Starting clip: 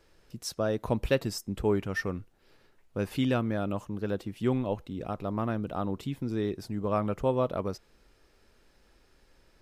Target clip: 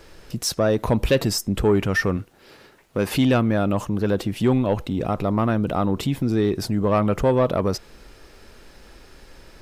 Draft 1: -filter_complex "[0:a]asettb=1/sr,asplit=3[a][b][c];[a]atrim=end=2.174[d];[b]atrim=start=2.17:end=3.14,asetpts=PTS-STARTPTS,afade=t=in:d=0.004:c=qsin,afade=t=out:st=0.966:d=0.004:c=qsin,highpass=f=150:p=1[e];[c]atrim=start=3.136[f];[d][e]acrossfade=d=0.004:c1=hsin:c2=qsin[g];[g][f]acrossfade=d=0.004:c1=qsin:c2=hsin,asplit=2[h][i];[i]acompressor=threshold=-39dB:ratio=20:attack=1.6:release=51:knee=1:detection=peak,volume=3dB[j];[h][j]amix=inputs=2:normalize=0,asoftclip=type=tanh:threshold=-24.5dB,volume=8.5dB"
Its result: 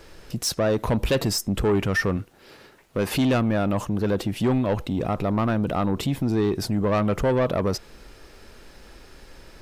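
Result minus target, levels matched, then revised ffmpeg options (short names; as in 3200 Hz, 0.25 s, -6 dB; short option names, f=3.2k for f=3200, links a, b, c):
soft clip: distortion +8 dB
-filter_complex "[0:a]asettb=1/sr,asplit=3[a][b][c];[a]atrim=end=2.174[d];[b]atrim=start=2.17:end=3.14,asetpts=PTS-STARTPTS,afade=t=in:d=0.004:c=qsin,afade=t=out:st=0.966:d=0.004:c=qsin,highpass=f=150:p=1[e];[c]atrim=start=3.136[f];[d][e]acrossfade=d=0.004:c1=hsin:c2=qsin[g];[g][f]acrossfade=d=0.004:c1=qsin:c2=hsin,asplit=2[h][i];[i]acompressor=threshold=-39dB:ratio=20:attack=1.6:release=51:knee=1:detection=peak,volume=3dB[j];[h][j]amix=inputs=2:normalize=0,asoftclip=type=tanh:threshold=-18dB,volume=8.5dB"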